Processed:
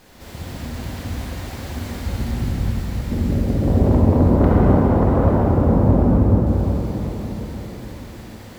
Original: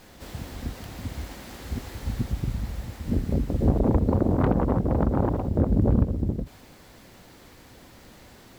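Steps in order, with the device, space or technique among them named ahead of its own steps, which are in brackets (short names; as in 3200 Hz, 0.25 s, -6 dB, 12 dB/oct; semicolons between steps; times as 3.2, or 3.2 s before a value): cathedral (reverb RT60 5.5 s, pre-delay 35 ms, DRR -7 dB)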